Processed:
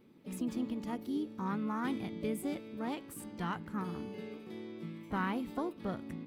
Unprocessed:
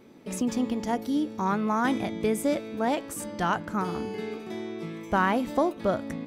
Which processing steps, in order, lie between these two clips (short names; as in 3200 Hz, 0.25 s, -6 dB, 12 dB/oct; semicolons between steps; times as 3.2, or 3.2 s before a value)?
fifteen-band EQ 160 Hz +4 dB, 630 Hz -10 dB, 1600 Hz -4 dB, 6300 Hz -10 dB; harmoniser +5 st -11 dB; gain -9 dB